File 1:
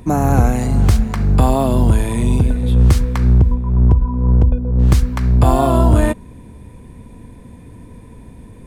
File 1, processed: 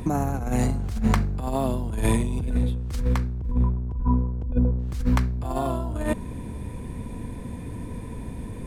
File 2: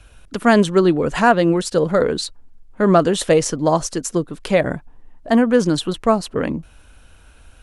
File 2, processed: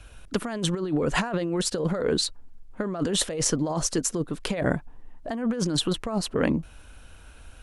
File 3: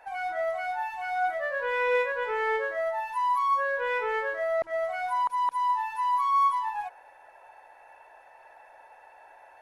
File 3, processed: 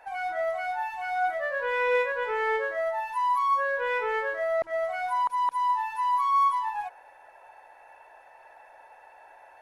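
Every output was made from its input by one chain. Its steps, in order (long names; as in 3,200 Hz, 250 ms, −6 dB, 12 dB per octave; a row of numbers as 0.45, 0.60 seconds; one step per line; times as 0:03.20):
compressor whose output falls as the input rises −21 dBFS, ratio −1
loudness normalisation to −27 LKFS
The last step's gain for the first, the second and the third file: −3.5, −5.0, +0.5 decibels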